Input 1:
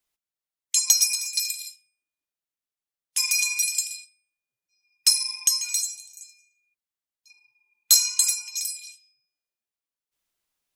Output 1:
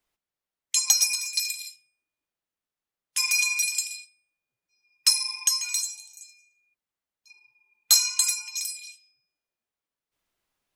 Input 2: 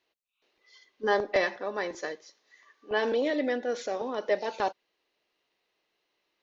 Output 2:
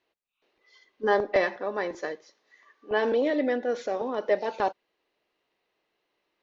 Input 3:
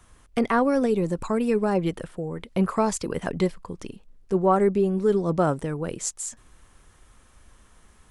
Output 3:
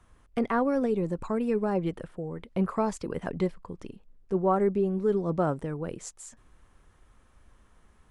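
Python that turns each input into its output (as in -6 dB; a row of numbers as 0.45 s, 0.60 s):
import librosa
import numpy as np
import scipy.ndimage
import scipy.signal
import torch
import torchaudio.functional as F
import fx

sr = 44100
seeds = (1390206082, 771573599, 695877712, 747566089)

y = fx.high_shelf(x, sr, hz=3200.0, db=-10.0)
y = y * 10.0 ** (-30 / 20.0) / np.sqrt(np.mean(np.square(y)))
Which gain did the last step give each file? +6.0 dB, +3.0 dB, -4.0 dB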